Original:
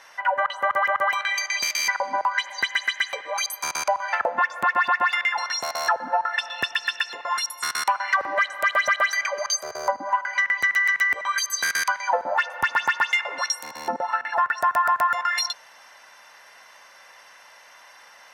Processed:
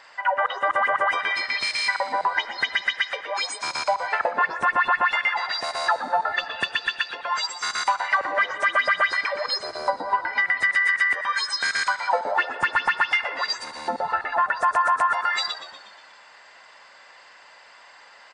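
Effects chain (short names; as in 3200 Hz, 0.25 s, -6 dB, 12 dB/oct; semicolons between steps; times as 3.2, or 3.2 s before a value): nonlinear frequency compression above 3400 Hz 1.5:1; frequency-shifting echo 0.12 s, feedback 57%, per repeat -84 Hz, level -13 dB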